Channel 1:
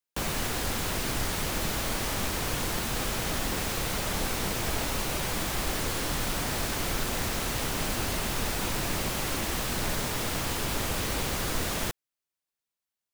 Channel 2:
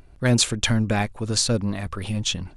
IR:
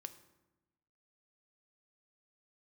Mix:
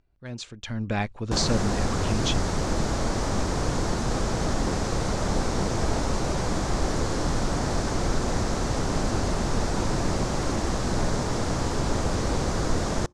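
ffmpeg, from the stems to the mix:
-filter_complex "[0:a]equalizer=frequency=2800:width=0.81:gain=-14.5,adelay=1150,volume=2.5dB,asplit=2[link_01][link_02];[link_02]volume=-15.5dB[link_03];[1:a]volume=-7.5dB,afade=type=in:start_time=0.66:duration=0.33:silence=0.266073[link_04];[2:a]atrim=start_sample=2205[link_05];[link_03][link_05]afir=irnorm=-1:irlink=0[link_06];[link_01][link_04][link_06]amix=inputs=3:normalize=0,lowpass=frequency=6700:width=0.5412,lowpass=frequency=6700:width=1.3066,dynaudnorm=framelen=120:gausssize=7:maxgain=4dB"

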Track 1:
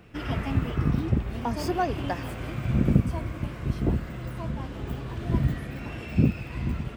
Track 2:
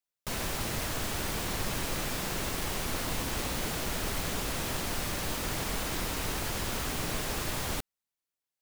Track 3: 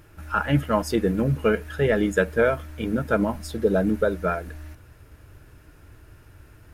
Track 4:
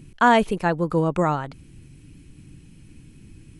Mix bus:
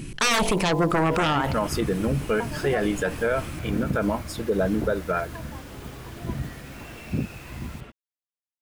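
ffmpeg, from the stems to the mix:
ffmpeg -i stem1.wav -i stem2.wav -i stem3.wav -i stem4.wav -filter_complex "[0:a]adelay=950,volume=-2dB[link_01];[1:a]volume=-14.5dB[link_02];[2:a]adelay=850,volume=1.5dB[link_03];[3:a]aeval=exprs='0.501*sin(PI/2*4.47*val(0)/0.501)':channel_layout=same,bandreject=frequency=48.46:width_type=h:width=4,bandreject=frequency=96.92:width_type=h:width=4,bandreject=frequency=145.38:width_type=h:width=4,bandreject=frequency=193.84:width_type=h:width=4,bandreject=frequency=242.3:width_type=h:width=4,bandreject=frequency=290.76:width_type=h:width=4,bandreject=frequency=339.22:width_type=h:width=4,bandreject=frequency=387.68:width_type=h:width=4,bandreject=frequency=436.14:width_type=h:width=4,bandreject=frequency=484.6:width_type=h:width=4,bandreject=frequency=533.06:width_type=h:width=4,bandreject=frequency=581.52:width_type=h:width=4,bandreject=frequency=629.98:width_type=h:width=4,bandreject=frequency=678.44:width_type=h:width=4,bandreject=frequency=726.9:width_type=h:width=4,bandreject=frequency=775.36:width_type=h:width=4,bandreject=frequency=823.82:width_type=h:width=4,bandreject=frequency=872.28:width_type=h:width=4,bandreject=frequency=920.74:width_type=h:width=4,bandreject=frequency=969.2:width_type=h:width=4,bandreject=frequency=1017.66:width_type=h:width=4,volume=-2dB[link_04];[link_01][link_02][link_03][link_04]amix=inputs=4:normalize=0,lowshelf=frequency=310:gain=-5.5,alimiter=limit=-14.5dB:level=0:latency=1:release=43" out.wav

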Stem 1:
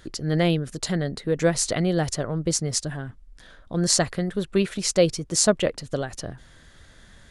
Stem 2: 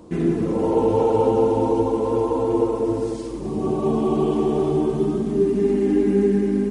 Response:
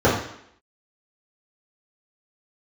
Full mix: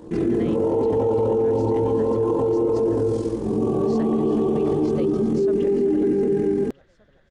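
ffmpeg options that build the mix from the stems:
-filter_complex "[0:a]lowpass=3000,volume=-11.5dB,asplit=2[link_01][link_02];[link_02]volume=-13dB[link_03];[1:a]tremolo=f=43:d=0.621,volume=0dB,asplit=2[link_04][link_05];[link_05]volume=-23.5dB[link_06];[2:a]atrim=start_sample=2205[link_07];[link_06][link_07]afir=irnorm=-1:irlink=0[link_08];[link_03]aecho=0:1:381|762|1143|1524|1905|2286|2667|3048:1|0.53|0.281|0.149|0.0789|0.0418|0.0222|0.0117[link_09];[link_01][link_04][link_08][link_09]amix=inputs=4:normalize=0,alimiter=limit=-14dB:level=0:latency=1:release=20"

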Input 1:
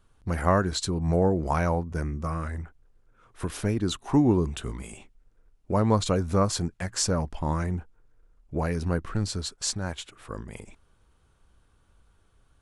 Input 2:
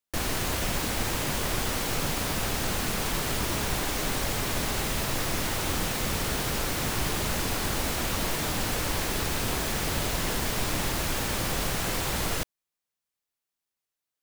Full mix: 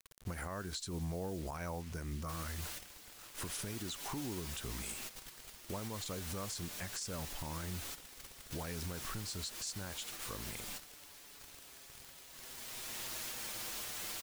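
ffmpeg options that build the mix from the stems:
ffmpeg -i stem1.wav -i stem2.wav -filter_complex "[0:a]acompressor=threshold=-29dB:ratio=12,acrusher=bits=8:mix=0:aa=0.000001,volume=-5dB,asplit=2[link_01][link_02];[1:a]lowshelf=frequency=170:gain=-11,asplit=2[link_03][link_04];[link_04]adelay=6.1,afreqshift=-0.26[link_05];[link_03][link_05]amix=inputs=2:normalize=1,adelay=2150,volume=-5dB,afade=type=in:start_time=12.29:duration=0.78:silence=0.223872[link_06];[link_02]apad=whole_len=722202[link_07];[link_06][link_07]sidechaingate=range=-11dB:threshold=-56dB:ratio=16:detection=peak[link_08];[link_01][link_08]amix=inputs=2:normalize=0,highshelf=frequency=2100:gain=10.5,alimiter=level_in=7.5dB:limit=-24dB:level=0:latency=1:release=121,volume=-7.5dB" out.wav

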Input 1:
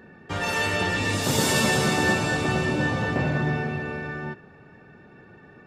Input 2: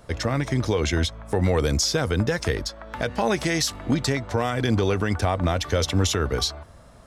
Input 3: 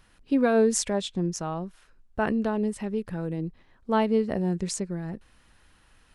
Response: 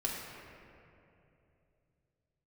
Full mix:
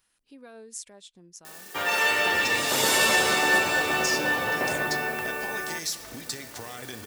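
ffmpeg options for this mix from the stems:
-filter_complex "[0:a]bass=frequency=250:gain=-13,treble=frequency=4000:gain=-13,acrusher=bits=8:mix=0:aa=0.000001,adelay=1450,volume=1dB[link_01];[1:a]acompressor=threshold=-30dB:ratio=6,adelay=2250,volume=-8.5dB,asplit=2[link_02][link_03];[link_03]volume=-9dB[link_04];[2:a]acompressor=threshold=-42dB:ratio=1.5,volume=-15.5dB[link_05];[3:a]atrim=start_sample=2205[link_06];[link_04][link_06]afir=irnorm=-1:irlink=0[link_07];[link_01][link_02][link_05][link_07]amix=inputs=4:normalize=0,lowshelf=frequency=180:gain=-11,crystalizer=i=3.5:c=0"

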